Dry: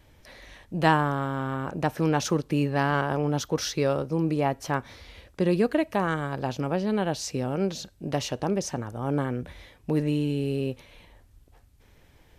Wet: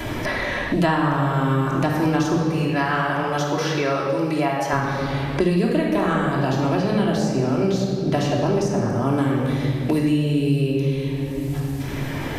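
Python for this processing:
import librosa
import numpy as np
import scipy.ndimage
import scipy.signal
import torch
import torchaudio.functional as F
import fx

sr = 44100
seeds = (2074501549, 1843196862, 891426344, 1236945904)

y = fx.highpass(x, sr, hz=1100.0, slope=6, at=(2.36, 4.73))
y = fx.room_shoebox(y, sr, seeds[0], volume_m3=1500.0, walls='mixed', distance_m=3.0)
y = fx.band_squash(y, sr, depth_pct=100)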